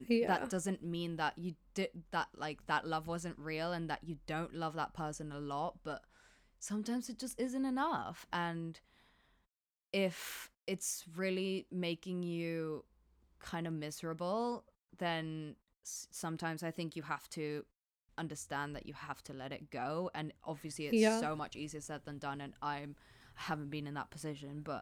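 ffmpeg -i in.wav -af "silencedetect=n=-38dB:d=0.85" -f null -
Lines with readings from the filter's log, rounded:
silence_start: 8.69
silence_end: 9.94 | silence_duration: 1.25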